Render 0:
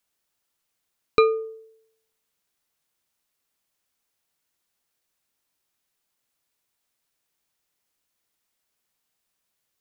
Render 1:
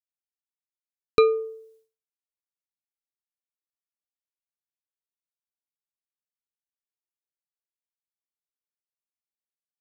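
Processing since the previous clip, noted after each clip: expander -56 dBFS; peaking EQ 1.7 kHz -5.5 dB 2 oct; trim +1.5 dB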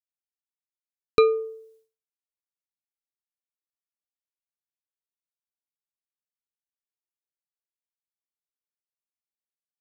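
no audible change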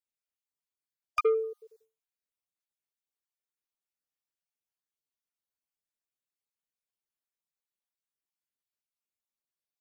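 random holes in the spectrogram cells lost 32%; saturation -17 dBFS, distortion -20 dB

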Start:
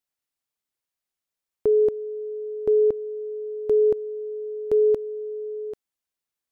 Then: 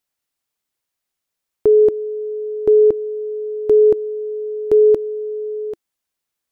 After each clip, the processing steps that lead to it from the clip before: dynamic bell 340 Hz, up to +7 dB, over -42 dBFS, Q 6.3; trim +6.5 dB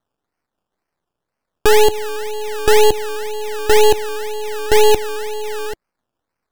decimation with a swept rate 17×, swing 60% 2 Hz; half-wave rectifier; trim +5 dB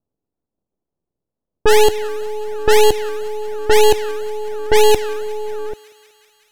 level-controlled noise filter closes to 450 Hz, open at -5.5 dBFS; thinning echo 186 ms, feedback 76%, high-pass 530 Hz, level -19.5 dB

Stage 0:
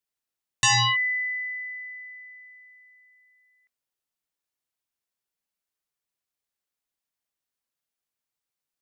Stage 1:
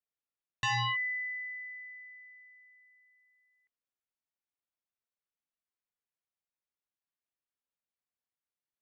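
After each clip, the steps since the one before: low-pass 2.9 kHz 12 dB/octave; trim -7.5 dB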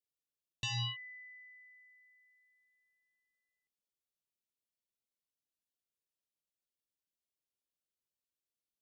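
high-order bell 1.3 kHz -16 dB; trim -1.5 dB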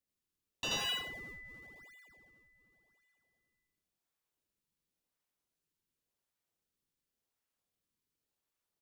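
high-pass 1 kHz 24 dB/octave; in parallel at -5.5 dB: decimation with a swept rate 37×, swing 160% 0.91 Hz; on the sum: loudspeakers at several distances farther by 28 m 0 dB, 60 m -12 dB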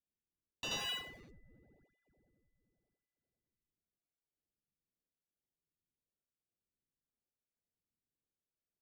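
local Wiener filter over 41 samples; trim -3.5 dB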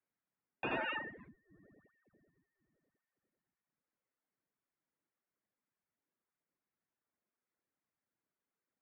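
reverb removal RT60 0.7 s; vibrato 12 Hz 50 cents; mistuned SSB -170 Hz 350–2300 Hz; trim +10 dB

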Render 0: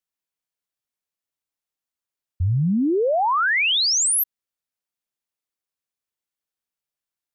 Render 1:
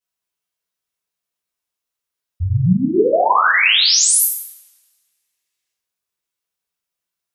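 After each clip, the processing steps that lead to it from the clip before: time-frequency box 5.02–5.72 s, 1.6–8.5 kHz +8 dB; two-slope reverb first 0.66 s, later 1.7 s, from -28 dB, DRR -9.5 dB; trim -4 dB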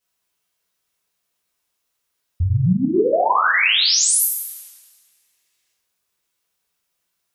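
compression 2:1, threshold -32 dBFS, peak gain reduction 12.5 dB; trim +8.5 dB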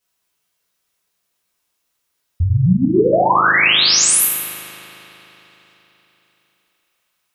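spring tank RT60 3.9 s, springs 38 ms, chirp 60 ms, DRR 11 dB; trim +3 dB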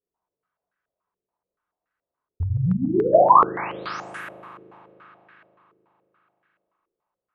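step-sequenced low-pass 7 Hz 420–1600 Hz; trim -8.5 dB

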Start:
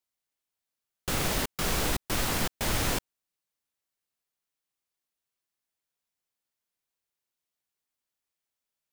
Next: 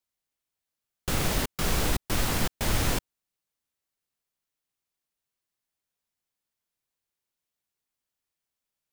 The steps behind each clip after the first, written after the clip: bass shelf 200 Hz +5 dB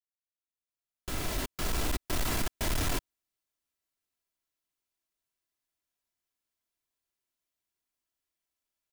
fade-in on the opening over 2.19 s; comb 3 ms, depth 39%; overload inside the chain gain 23 dB; trim -2.5 dB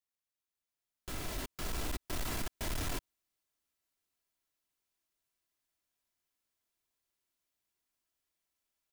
peak limiter -33.5 dBFS, peak gain reduction 8 dB; trim +1.5 dB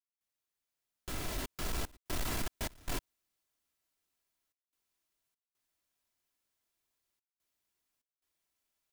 trance gate ".xxxxxxxx.xxx" 73 bpm -24 dB; trim +1.5 dB

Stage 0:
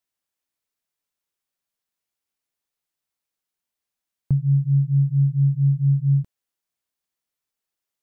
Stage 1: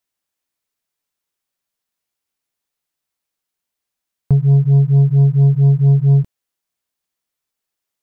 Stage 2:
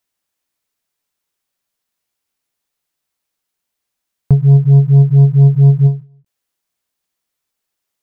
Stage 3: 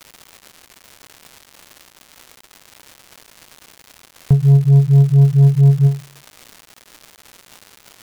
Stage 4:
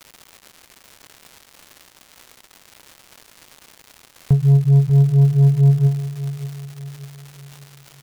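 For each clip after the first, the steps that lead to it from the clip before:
waveshaping leveller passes 1; trim +6 dB
endings held to a fixed fall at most 180 dB/s; trim +4 dB
crackle 300 per s -25 dBFS; trim -2.5 dB
feedback delay 588 ms, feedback 42%, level -13.5 dB; trim -2.5 dB

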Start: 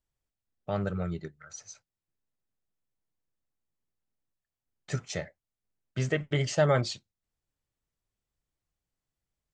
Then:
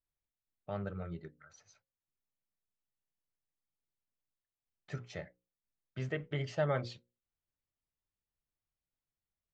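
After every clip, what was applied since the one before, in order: low-pass 3.5 kHz 12 dB/octave; hum notches 60/120/180/240/300/360/420/480/540 Hz; trim -8 dB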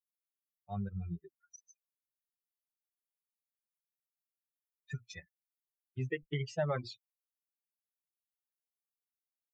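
expander on every frequency bin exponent 3; compression 2:1, threshold -46 dBFS, peak gain reduction 9 dB; trim +10 dB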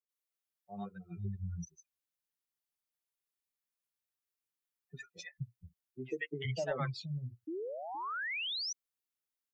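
painted sound rise, 7.47–8.64 s, 300–6100 Hz -39 dBFS; three bands offset in time mids, highs, lows 90/470 ms, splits 190/680 Hz; trim +1.5 dB

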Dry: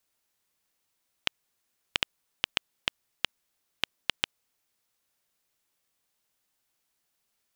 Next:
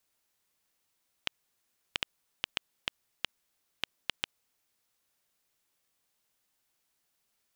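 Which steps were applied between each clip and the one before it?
peak limiter -10 dBFS, peak gain reduction 6 dB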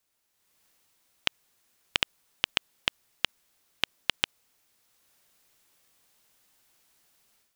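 level rider gain up to 11 dB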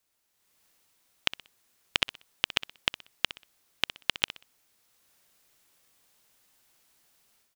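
feedback delay 62 ms, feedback 31%, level -15 dB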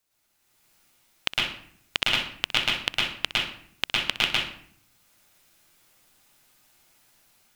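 reverberation RT60 0.60 s, pre-delay 105 ms, DRR -5.5 dB

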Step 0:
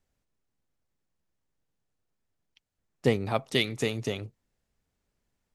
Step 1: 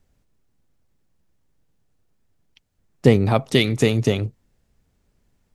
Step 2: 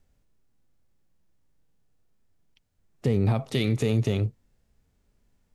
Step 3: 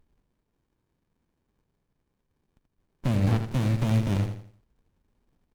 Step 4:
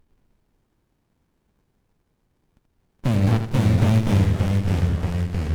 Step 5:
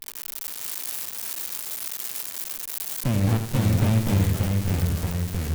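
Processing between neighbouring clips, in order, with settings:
in parallel at -1.5 dB: peak limiter -17 dBFS, peak gain reduction 8 dB; on the sum: bass shelf 380 Hz +7.5 dB; trim +2.5 dB
harmonic-percussive split percussive -10 dB; peak limiter -14 dBFS, peak gain reduction 8.5 dB
formants flattened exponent 0.6; feedback delay 82 ms, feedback 35%, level -7.5 dB; sliding maximum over 65 samples; trim -2 dB
ever faster or slower copies 109 ms, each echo -2 st, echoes 3; trim +4.5 dB
zero-crossing glitches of -15 dBFS; trim -3 dB

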